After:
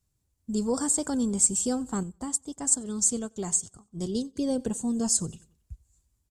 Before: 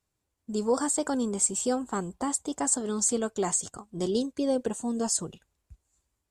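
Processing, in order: tone controls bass +14 dB, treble +9 dB; feedback echo 92 ms, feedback 45%, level -24 dB; 2.03–4.36 upward expander 1.5:1, over -38 dBFS; gain -5 dB

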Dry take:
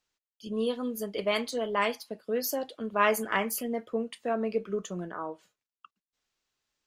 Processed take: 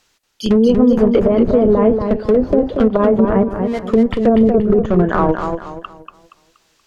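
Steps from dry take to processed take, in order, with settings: in parallel at -8.5 dB: Schmitt trigger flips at -32.5 dBFS; 3.43–3.88 on the sum: pre-emphasis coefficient 0.8; treble ducked by the level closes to 360 Hz, closed at -25.5 dBFS; maximiser +26 dB; warbling echo 0.237 s, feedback 34%, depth 95 cents, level -6 dB; gain -4 dB

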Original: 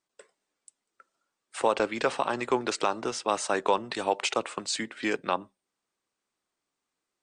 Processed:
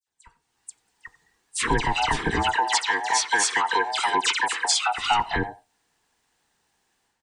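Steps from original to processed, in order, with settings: band-swap scrambler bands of 500 Hz; 2.47–4.89 HPF 690 Hz 12 dB/oct; compressor 4:1, threshold -31 dBFS, peak gain reduction 10.5 dB; limiter -24 dBFS, peak gain reduction 6.5 dB; AGC gain up to 15.5 dB; dispersion lows, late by 75 ms, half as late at 2900 Hz; speakerphone echo 90 ms, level -18 dB; gain -1.5 dB

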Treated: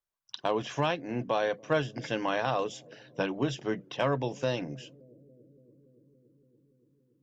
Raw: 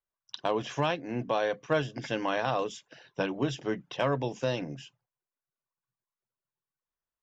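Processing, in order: analogue delay 0.284 s, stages 1024, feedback 81%, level -24 dB

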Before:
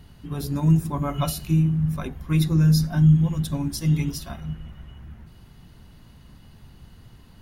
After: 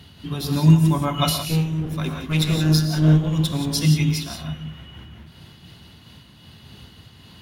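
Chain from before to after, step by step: HPF 70 Hz 24 dB/oct; bell 3400 Hz +11 dB 1.1 oct; 1.42–3.69 one-sided clip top -26.5 dBFS; non-linear reverb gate 0.2 s rising, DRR 4 dB; noise-modulated level, depth 60%; gain +5.5 dB

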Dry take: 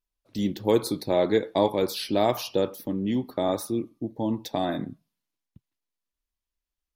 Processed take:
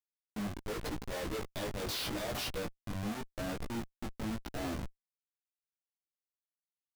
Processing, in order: 1.11–2.71 resonant high shelf 2000 Hz +9 dB, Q 1.5; Schmitt trigger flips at -28 dBFS; chorus 0.85 Hz, delay 15 ms, depth 4.8 ms; gain -6.5 dB

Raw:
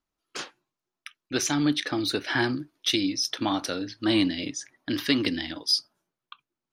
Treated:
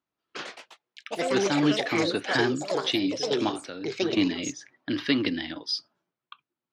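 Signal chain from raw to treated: 3.49–4.17 compressor 6:1, threshold -33 dBFS, peak gain reduction 13 dB; echoes that change speed 0.186 s, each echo +5 st, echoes 3; BPF 100–3800 Hz

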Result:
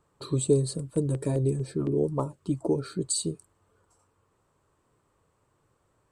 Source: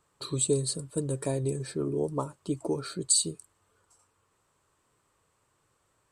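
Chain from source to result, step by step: tilt shelf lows +5.5 dB, about 1200 Hz; 0.77–2.97 LFO notch saw down 6.3 Hz -> 1.8 Hz 300–2800 Hz

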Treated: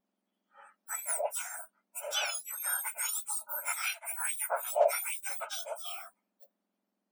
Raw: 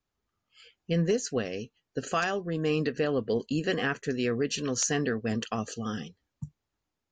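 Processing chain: spectrum mirrored in octaves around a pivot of 2000 Hz; 3.7–4.5 steep high-pass 660 Hz 72 dB/oct

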